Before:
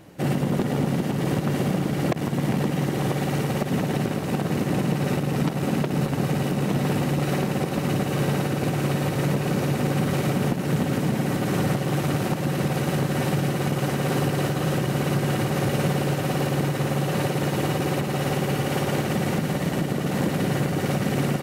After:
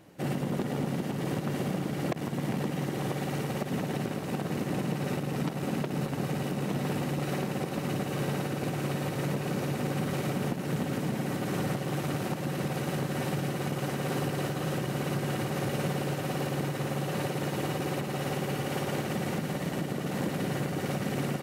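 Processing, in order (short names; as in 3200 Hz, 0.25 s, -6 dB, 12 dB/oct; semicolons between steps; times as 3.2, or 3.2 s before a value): low shelf 83 Hz -7 dB; gain -6.5 dB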